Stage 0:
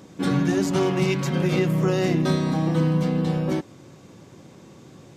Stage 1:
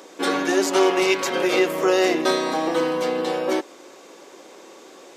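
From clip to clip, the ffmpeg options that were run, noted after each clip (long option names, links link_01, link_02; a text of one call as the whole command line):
ffmpeg -i in.wav -af "highpass=frequency=370:width=0.5412,highpass=frequency=370:width=1.3066,volume=7.5dB" out.wav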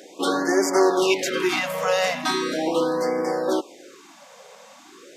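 ffmpeg -i in.wav -af "afftfilt=real='re*(1-between(b*sr/1024,300*pow(3300/300,0.5+0.5*sin(2*PI*0.39*pts/sr))/1.41,300*pow(3300/300,0.5+0.5*sin(2*PI*0.39*pts/sr))*1.41))':imag='im*(1-between(b*sr/1024,300*pow(3300/300,0.5+0.5*sin(2*PI*0.39*pts/sr))/1.41,300*pow(3300/300,0.5+0.5*sin(2*PI*0.39*pts/sr))*1.41))':win_size=1024:overlap=0.75" out.wav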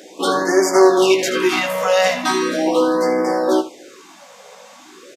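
ffmpeg -i in.wav -af "aecho=1:1:16|79:0.501|0.266,volume=3.5dB" out.wav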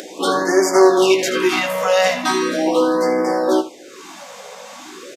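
ffmpeg -i in.wav -af "acompressor=mode=upward:threshold=-28dB:ratio=2.5" out.wav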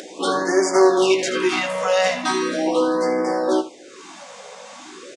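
ffmpeg -i in.wav -af "aresample=22050,aresample=44100,volume=-3dB" out.wav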